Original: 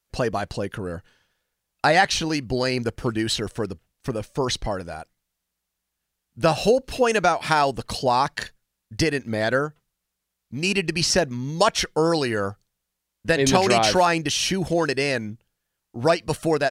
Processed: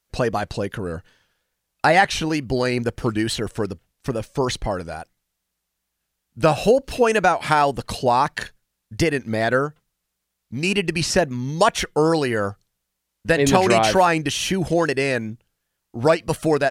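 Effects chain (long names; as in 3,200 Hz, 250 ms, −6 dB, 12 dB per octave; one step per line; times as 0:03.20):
dynamic equaliser 4,900 Hz, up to −7 dB, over −39 dBFS, Q 1.4
tape wow and flutter 57 cents
level +2.5 dB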